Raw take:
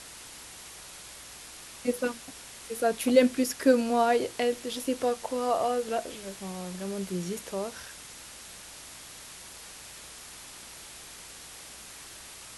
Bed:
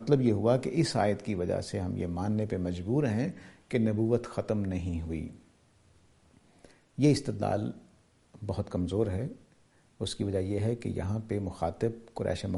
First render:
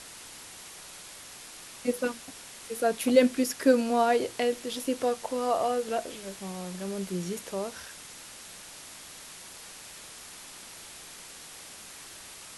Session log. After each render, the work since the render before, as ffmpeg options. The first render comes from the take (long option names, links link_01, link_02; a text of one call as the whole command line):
ffmpeg -i in.wav -af "bandreject=frequency=60:width_type=h:width=4,bandreject=frequency=120:width_type=h:width=4" out.wav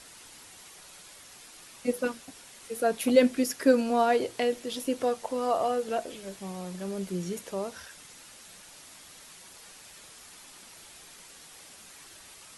ffmpeg -i in.wav -af "afftdn=noise_reduction=6:noise_floor=-47" out.wav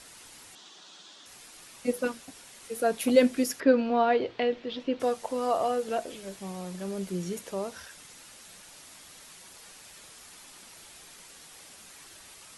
ffmpeg -i in.wav -filter_complex "[0:a]asettb=1/sr,asplit=3[link_01][link_02][link_03];[link_01]atrim=end=0.554[link_04];[link_02]atrim=start=0.55:end=1.26,asetpts=PTS-STARTPTS,afade=type=in:duration=0.004:curve=qsin,afade=type=out:start_time=0.706:duration=0.004:curve=qsin,highpass=frequency=180:width=0.5412,highpass=frequency=180:width=1.3066,equalizer=frequency=300:width_type=q:width=4:gain=4,equalizer=frequency=510:width_type=q:width=4:gain=-6,equalizer=frequency=2200:width_type=q:width=4:gain=-9,equalizer=frequency=3500:width_type=q:width=4:gain=8,lowpass=frequency=6600:width=0.5412,lowpass=frequency=6600:width=1.3066[link_05];[link_03]atrim=start=1.256[link_06];[link_04][link_05]acrossfade=duration=0.004:curve1=hsin:curve2=qsin[link_07];[link_07][link_06]acrossfade=duration=0.004:curve1=qsin:curve2=hsin,asettb=1/sr,asplit=3[link_08][link_09][link_10];[link_08]atrim=end=3.604[link_11];[link_09]atrim=start=3.6:end=5,asetpts=PTS-STARTPTS,afade=type=in:duration=0.004:curve=qsin,afade=type=out:start_time=1.396:duration=0.004:curve=qsin,lowpass=frequency=3900:width=0.5412,lowpass=frequency=3900:width=1.3066[link_12];[link_10]atrim=start=4.996[link_13];[link_11][link_12]acrossfade=duration=0.004:curve1=hsin:curve2=qsin[link_14];[link_14][link_13]acrossfade=duration=0.004:curve1=qsin:curve2=hsin" out.wav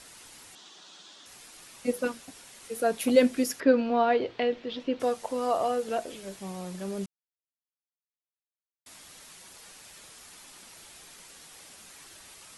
ffmpeg -i in.wav -filter_complex "[0:a]asplit=3[link_01][link_02][link_03];[link_01]atrim=end=7.06,asetpts=PTS-STARTPTS,afade=type=out:start_time=7.056:duration=0.004:curve=hsin[link_04];[link_02]atrim=start=7.06:end=8.86,asetpts=PTS-STARTPTS,volume=0[link_05];[link_03]atrim=start=8.86,asetpts=PTS-STARTPTS,afade=type=in:duration=0.004:curve=hsin[link_06];[link_04][link_05][link_06]concat=n=3:v=0:a=1" out.wav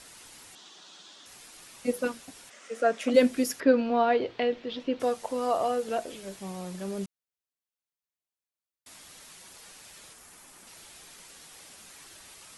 ffmpeg -i in.wav -filter_complex "[0:a]asplit=3[link_01][link_02][link_03];[link_01]afade=type=out:start_time=2.49:duration=0.02[link_04];[link_02]highpass=frequency=220:width=0.5412,highpass=frequency=220:width=1.3066,equalizer=frequency=360:width_type=q:width=4:gain=-5,equalizer=frequency=600:width_type=q:width=4:gain=7,equalizer=frequency=880:width_type=q:width=4:gain=-5,equalizer=frequency=1300:width_type=q:width=4:gain=6,equalizer=frequency=1900:width_type=q:width=4:gain=5,equalizer=frequency=4200:width_type=q:width=4:gain=-7,lowpass=frequency=7400:width=0.5412,lowpass=frequency=7400:width=1.3066,afade=type=in:start_time=2.49:duration=0.02,afade=type=out:start_time=3.13:duration=0.02[link_05];[link_03]afade=type=in:start_time=3.13:duration=0.02[link_06];[link_04][link_05][link_06]amix=inputs=3:normalize=0,asettb=1/sr,asplit=3[link_07][link_08][link_09];[link_07]atrim=end=10.134[link_10];[link_08]atrim=start=10.13:end=10.67,asetpts=PTS-STARTPTS,afade=type=in:duration=0.004:curve=qsin,afade=type=out:start_time=0.536:duration=0.004:curve=qsin,equalizer=frequency=3900:width_type=o:width=1.4:gain=-6.5[link_11];[link_09]atrim=start=10.666[link_12];[link_10][link_11]acrossfade=duration=0.004:curve1=hsin:curve2=qsin[link_13];[link_13][link_12]acrossfade=duration=0.004:curve1=qsin:curve2=hsin" out.wav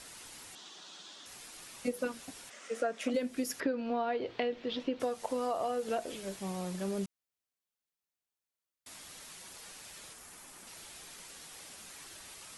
ffmpeg -i in.wav -af "acompressor=threshold=-29dB:ratio=12" out.wav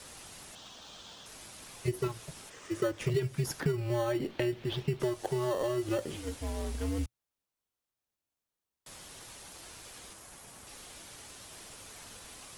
ffmpeg -i in.wav -filter_complex "[0:a]asplit=2[link_01][link_02];[link_02]acrusher=samples=17:mix=1:aa=0.000001,volume=-8.5dB[link_03];[link_01][link_03]amix=inputs=2:normalize=0,afreqshift=-120" out.wav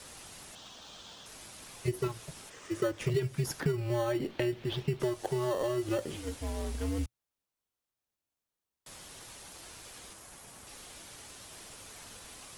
ffmpeg -i in.wav -af anull out.wav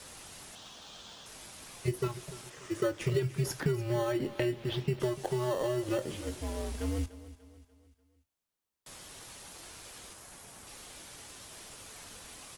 ffmpeg -i in.wav -filter_complex "[0:a]asplit=2[link_01][link_02];[link_02]adelay=23,volume=-13dB[link_03];[link_01][link_03]amix=inputs=2:normalize=0,aecho=1:1:294|588|882|1176:0.15|0.0673|0.0303|0.0136" out.wav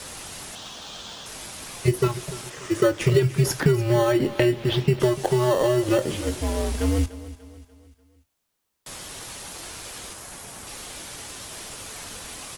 ffmpeg -i in.wav -af "volume=11dB" out.wav